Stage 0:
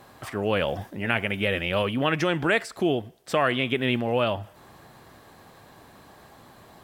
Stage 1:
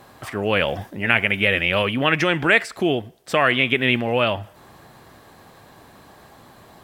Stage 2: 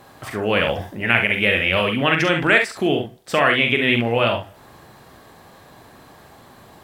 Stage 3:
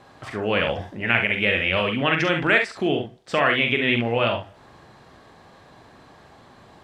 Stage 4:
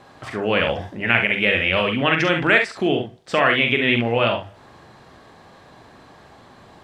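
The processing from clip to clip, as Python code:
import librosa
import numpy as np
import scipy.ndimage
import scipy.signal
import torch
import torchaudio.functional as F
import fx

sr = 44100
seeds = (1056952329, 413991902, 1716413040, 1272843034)

y1 = fx.dynamic_eq(x, sr, hz=2200.0, q=1.3, threshold_db=-41.0, ratio=4.0, max_db=7)
y1 = y1 * 10.0 ** (3.0 / 20.0)
y2 = fx.room_early_taps(y1, sr, ms=(43, 67), db=(-6.5, -8.0))
y3 = scipy.signal.sosfilt(scipy.signal.butter(2, 6100.0, 'lowpass', fs=sr, output='sos'), y2)
y3 = y3 * 10.0 ** (-3.0 / 20.0)
y4 = fx.hum_notches(y3, sr, base_hz=50, count=3)
y4 = y4 * 10.0 ** (2.5 / 20.0)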